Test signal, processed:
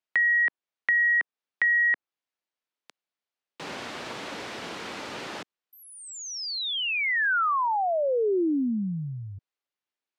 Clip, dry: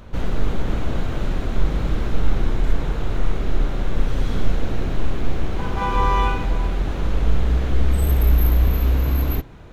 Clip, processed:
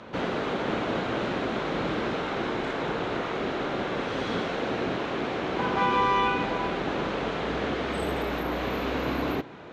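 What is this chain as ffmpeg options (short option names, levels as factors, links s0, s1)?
-filter_complex "[0:a]acrossover=split=390|1600[s0][s1][s2];[s0]acompressor=threshold=0.141:ratio=4[s3];[s1]acompressor=threshold=0.0316:ratio=4[s4];[s2]acompressor=threshold=0.0224:ratio=4[s5];[s3][s4][s5]amix=inputs=3:normalize=0,highpass=250,lowpass=4200,volume=1.68"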